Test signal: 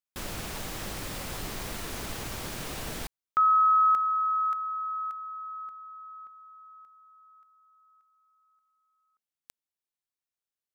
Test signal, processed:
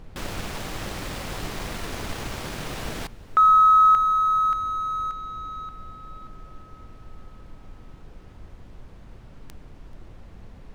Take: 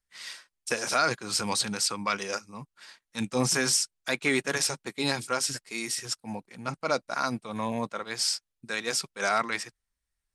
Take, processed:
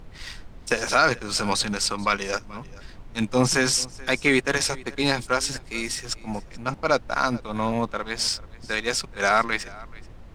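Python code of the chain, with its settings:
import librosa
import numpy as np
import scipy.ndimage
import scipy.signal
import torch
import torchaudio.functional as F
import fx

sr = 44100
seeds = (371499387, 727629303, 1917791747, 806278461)

p1 = fx.law_mismatch(x, sr, coded='A')
p2 = p1 + fx.echo_single(p1, sr, ms=433, db=-22.0, dry=0)
p3 = fx.dmg_noise_colour(p2, sr, seeds[0], colour='brown', level_db=-48.0)
p4 = fx.high_shelf(p3, sr, hz=7500.0, db=-11.0)
y = p4 * 10.0 ** (7.0 / 20.0)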